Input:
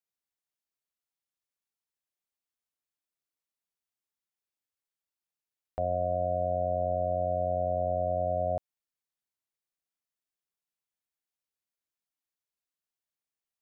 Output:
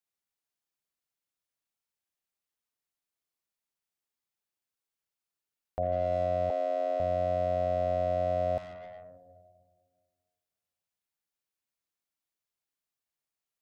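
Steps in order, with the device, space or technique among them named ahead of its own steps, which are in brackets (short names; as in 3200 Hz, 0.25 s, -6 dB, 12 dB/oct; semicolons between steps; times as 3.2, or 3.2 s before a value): saturated reverb return (on a send at -4.5 dB: reverb RT60 1.8 s, pre-delay 40 ms + soft clip -38 dBFS, distortion -6 dB); 6.5–7 on the sum: Chebyshev high-pass 200 Hz, order 10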